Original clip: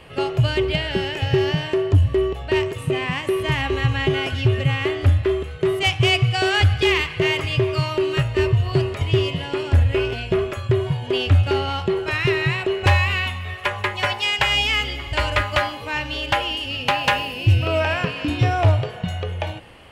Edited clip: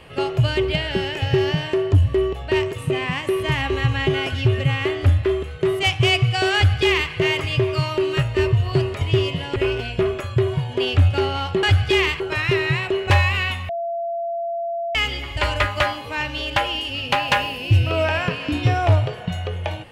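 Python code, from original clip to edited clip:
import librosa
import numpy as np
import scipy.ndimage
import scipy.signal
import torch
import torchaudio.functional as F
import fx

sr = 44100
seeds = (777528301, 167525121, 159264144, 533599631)

y = fx.edit(x, sr, fx.duplicate(start_s=6.55, length_s=0.57, to_s=11.96),
    fx.cut(start_s=9.56, length_s=0.33),
    fx.bleep(start_s=13.45, length_s=1.26, hz=680.0, db=-22.5), tone=tone)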